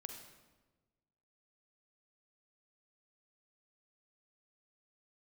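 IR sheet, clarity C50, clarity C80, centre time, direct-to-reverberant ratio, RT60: 5.0 dB, 7.0 dB, 34 ms, 4.0 dB, 1.2 s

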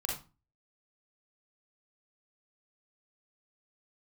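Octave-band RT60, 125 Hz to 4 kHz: 0.45 s, 0.40 s, 0.30 s, 0.30 s, 0.25 s, 0.25 s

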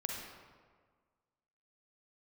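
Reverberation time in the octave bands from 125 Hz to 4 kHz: 1.7 s, 1.7 s, 1.6 s, 1.6 s, 1.3 s, 0.95 s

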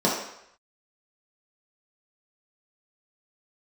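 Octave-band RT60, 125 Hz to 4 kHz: 0.55 s, 0.55 s, 0.70 s, 0.75 s, 0.80 s, 0.70 s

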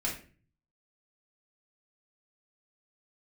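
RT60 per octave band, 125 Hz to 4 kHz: 0.90 s, 0.60 s, 0.45 s, 0.35 s, 0.40 s, 0.30 s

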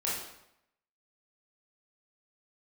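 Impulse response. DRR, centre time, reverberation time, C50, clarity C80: -7.0 dB, 58 ms, 0.80 s, 1.0 dB, 5.0 dB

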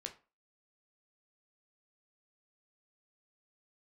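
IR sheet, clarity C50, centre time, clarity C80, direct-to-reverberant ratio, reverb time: 13.5 dB, 11 ms, 19.5 dB, 3.5 dB, 0.35 s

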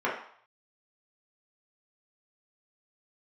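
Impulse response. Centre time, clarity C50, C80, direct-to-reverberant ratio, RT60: 36 ms, 5.5 dB, 9.0 dB, -6.5 dB, 0.60 s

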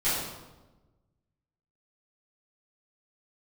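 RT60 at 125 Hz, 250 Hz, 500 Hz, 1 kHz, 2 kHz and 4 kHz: 1.8 s, 1.5 s, 1.2 s, 1.1 s, 0.85 s, 0.80 s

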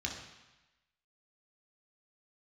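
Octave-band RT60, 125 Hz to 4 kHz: 1.0 s, 1.0 s, 0.95 s, 1.1 s, 1.2 s, 1.1 s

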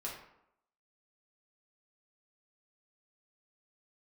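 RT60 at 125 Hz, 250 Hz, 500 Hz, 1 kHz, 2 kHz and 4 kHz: 0.60 s, 0.75 s, 0.80 s, 0.80 s, 0.65 s, 0.45 s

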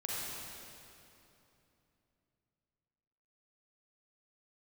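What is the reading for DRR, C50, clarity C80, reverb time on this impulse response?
-6.0 dB, -4.5 dB, -2.5 dB, 3.0 s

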